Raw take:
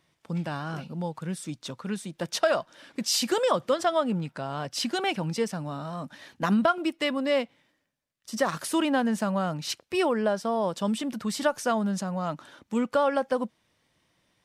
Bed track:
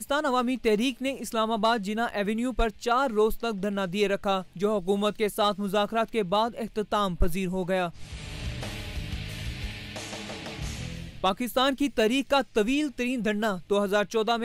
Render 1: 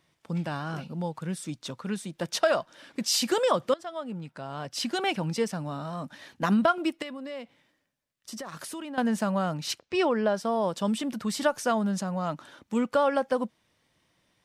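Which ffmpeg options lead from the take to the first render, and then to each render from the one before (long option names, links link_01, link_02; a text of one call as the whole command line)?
ffmpeg -i in.wav -filter_complex "[0:a]asettb=1/sr,asplit=3[link_01][link_02][link_03];[link_01]atrim=end=7.024[link_04];[link_02]atrim=start=7.02:end=8.98,asetpts=PTS-STARTPTS,afade=type=in:duration=0.004:curve=qsin,afade=type=out:start_time=1.956:duration=0.004:curve=qsin,acompressor=threshold=-36dB:ratio=5:attack=3.2:release=140:knee=1:detection=peak[link_05];[link_03]atrim=start=8.976[link_06];[link_04][link_05]acrossfade=duration=0.004:curve1=hsin:curve2=qsin[link_07];[link_07][link_06]acrossfade=duration=0.004:curve1=qsin:curve2=hsin,asettb=1/sr,asplit=3[link_08][link_09][link_10];[link_08]atrim=end=9.804[link_11];[link_09]atrim=start=9.8:end=10.34,asetpts=PTS-STARTPTS,afade=type=in:duration=0.004:curve=qsin,afade=type=out:start_time=0.536:duration=0.004:curve=qsin,lowpass=frequency=6700:width=0.5412,lowpass=frequency=6700:width=1.3066[link_12];[link_10]atrim=start=10.336[link_13];[link_11][link_12]acrossfade=duration=0.004:curve1=hsin:curve2=qsin[link_14];[link_14][link_13]acrossfade=duration=0.004:curve1=qsin:curve2=hsin,asplit=2[link_15][link_16];[link_15]atrim=end=3.74,asetpts=PTS-STARTPTS,afade=type=out:start_time=3.736:duration=0.004:curve=hsin:silence=0.133352[link_17];[link_16]atrim=start=3.74,asetpts=PTS-STARTPTS,afade=type=in:duration=1.35:silence=0.133352[link_18];[link_17][link_18]concat=n=2:v=0:a=1" out.wav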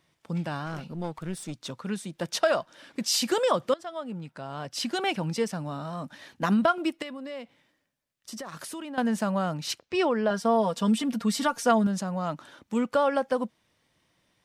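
ffmpeg -i in.wav -filter_complex "[0:a]asettb=1/sr,asplit=3[link_01][link_02][link_03];[link_01]atrim=end=0.664[link_04];[link_02]atrim=start=0.66:end=1.65,asetpts=PTS-STARTPTS,afade=type=in:duration=0.004:curve=qsin,afade=type=out:start_time=0.986:duration=0.004:curve=qsin,aeval=exprs='clip(val(0),-1,0.0133)':channel_layout=same[link_05];[link_03]atrim=start=1.646[link_06];[link_04][link_05]acrossfade=duration=0.004:curve1=hsin:curve2=qsin[link_07];[link_07][link_06]acrossfade=duration=0.004:curve1=qsin:curve2=hsin,asettb=1/sr,asplit=3[link_08][link_09][link_10];[link_08]atrim=end=10.304[link_11];[link_09]atrim=start=10.3:end=11.87,asetpts=PTS-STARTPTS,afade=type=in:duration=0.004:curve=qsin,afade=type=out:start_time=1.566:duration=0.004:curve=qsin,aecho=1:1:4.3:0.77,atrim=end_sample=69237[link_12];[link_10]atrim=start=11.866[link_13];[link_11][link_12]acrossfade=duration=0.004:curve1=hsin:curve2=qsin[link_14];[link_14][link_13]acrossfade=duration=0.004:curve1=qsin:curve2=hsin" out.wav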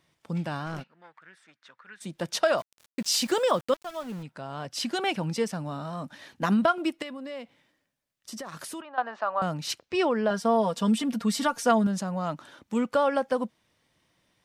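ffmpeg -i in.wav -filter_complex "[0:a]asplit=3[link_01][link_02][link_03];[link_01]afade=type=out:start_time=0.82:duration=0.02[link_04];[link_02]bandpass=frequency=1700:width_type=q:width=3.4,afade=type=in:start_time=0.82:duration=0.02,afade=type=out:start_time=2:duration=0.02[link_05];[link_03]afade=type=in:start_time=2:duration=0.02[link_06];[link_04][link_05][link_06]amix=inputs=3:normalize=0,asplit=3[link_07][link_08][link_09];[link_07]afade=type=out:start_time=2.57:duration=0.02[link_10];[link_08]aeval=exprs='val(0)*gte(abs(val(0)),0.00841)':channel_layout=same,afade=type=in:start_time=2.57:duration=0.02,afade=type=out:start_time=4.22:duration=0.02[link_11];[link_09]afade=type=in:start_time=4.22:duration=0.02[link_12];[link_10][link_11][link_12]amix=inputs=3:normalize=0,asettb=1/sr,asplit=3[link_13][link_14][link_15];[link_13]atrim=end=8.814[link_16];[link_14]atrim=start=8.81:end=9.42,asetpts=PTS-STARTPTS,afade=type=in:duration=0.004:curve=qsin,afade=type=out:start_time=0.606:duration=0.004:curve=qsin,highpass=frequency=440:width=0.5412,highpass=frequency=440:width=1.3066,equalizer=frequency=460:width_type=q:width=4:gain=-8,equalizer=frequency=750:width_type=q:width=4:gain=4,equalizer=frequency=1200:width_type=q:width=4:gain=8,equalizer=frequency=2200:width_type=q:width=4:gain=-6,equalizer=frequency=3200:width_type=q:width=4:gain=-7,lowpass=frequency=3500:width=0.5412,lowpass=frequency=3500:width=1.3066[link_17];[link_15]atrim=start=9.416[link_18];[link_16][link_17]acrossfade=duration=0.004:curve1=hsin:curve2=qsin[link_19];[link_19][link_18]acrossfade=duration=0.004:curve1=qsin:curve2=hsin" out.wav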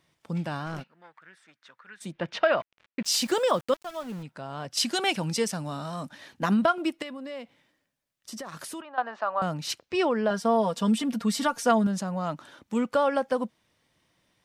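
ffmpeg -i in.wav -filter_complex "[0:a]asettb=1/sr,asplit=3[link_01][link_02][link_03];[link_01]atrim=end=2.124[link_04];[link_02]atrim=start=2.12:end=3.05,asetpts=PTS-STARTPTS,afade=type=in:duration=0.004:curve=qsin,afade=type=out:start_time=0.926:duration=0.004:curve=qsin,lowpass=frequency=2500:width_type=q:width=1.5[link_05];[link_03]atrim=start=3.046[link_06];[link_04][link_05]acrossfade=duration=0.004:curve1=hsin:curve2=qsin[link_07];[link_07][link_06]acrossfade=duration=0.004:curve1=qsin:curve2=hsin,asettb=1/sr,asplit=3[link_08][link_09][link_10];[link_08]atrim=end=4.774[link_11];[link_09]atrim=start=4.77:end=6.09,asetpts=PTS-STARTPTS,afade=type=in:duration=0.004:curve=qsin,afade=type=out:start_time=1.316:duration=0.004:curve=qsin,equalizer=frequency=8800:width=0.34:gain=8.5[link_12];[link_10]atrim=start=6.086[link_13];[link_11][link_12]acrossfade=duration=0.004:curve1=hsin:curve2=qsin[link_14];[link_14][link_13]acrossfade=duration=0.004:curve1=qsin:curve2=hsin" out.wav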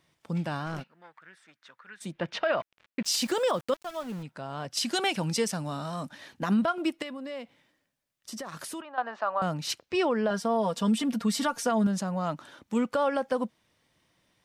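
ffmpeg -i in.wav -af "alimiter=limit=-17.5dB:level=0:latency=1:release=83" out.wav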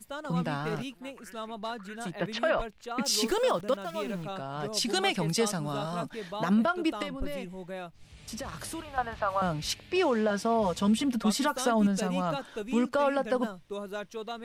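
ffmpeg -i in.wav -i bed.wav -filter_complex "[1:a]volume=-12.5dB[link_01];[0:a][link_01]amix=inputs=2:normalize=0" out.wav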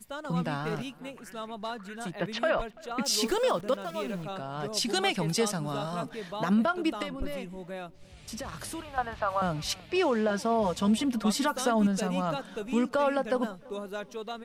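ffmpeg -i in.wav -filter_complex "[0:a]asplit=2[link_01][link_02];[link_02]adelay=337,lowpass=frequency=1800:poles=1,volume=-22.5dB,asplit=2[link_03][link_04];[link_04]adelay=337,lowpass=frequency=1800:poles=1,volume=0.49,asplit=2[link_05][link_06];[link_06]adelay=337,lowpass=frequency=1800:poles=1,volume=0.49[link_07];[link_01][link_03][link_05][link_07]amix=inputs=4:normalize=0" out.wav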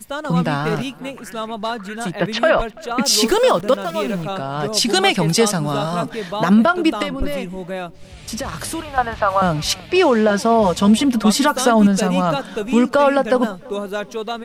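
ffmpeg -i in.wav -af "volume=12dB" out.wav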